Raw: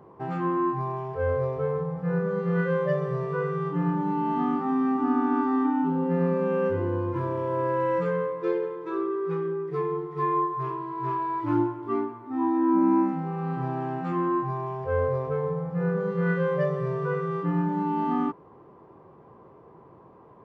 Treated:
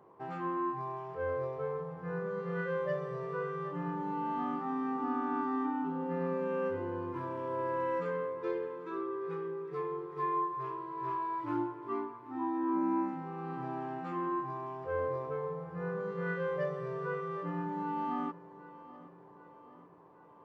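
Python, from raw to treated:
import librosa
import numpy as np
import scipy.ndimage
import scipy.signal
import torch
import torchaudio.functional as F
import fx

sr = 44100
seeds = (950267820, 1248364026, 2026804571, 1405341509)

p1 = fx.low_shelf(x, sr, hz=250.0, db=-11.0)
p2 = p1 + fx.echo_feedback(p1, sr, ms=778, feedback_pct=55, wet_db=-18, dry=0)
y = p2 * 10.0 ** (-6.0 / 20.0)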